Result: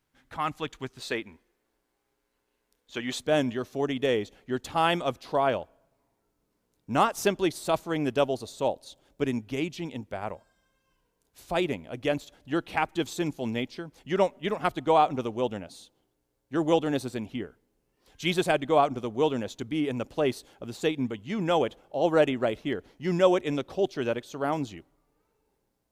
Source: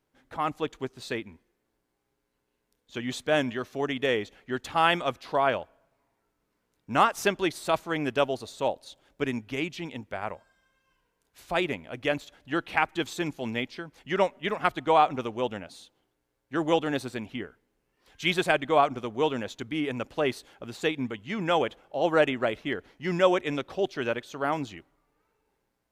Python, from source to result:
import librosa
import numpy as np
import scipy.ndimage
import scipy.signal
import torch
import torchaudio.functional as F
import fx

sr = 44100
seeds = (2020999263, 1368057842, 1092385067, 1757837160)

y = fx.peak_eq(x, sr, hz=fx.steps((0.0, 460.0), (0.99, 120.0), (3.19, 1800.0)), db=-7.5, octaves=2.0)
y = y * 10.0 ** (2.5 / 20.0)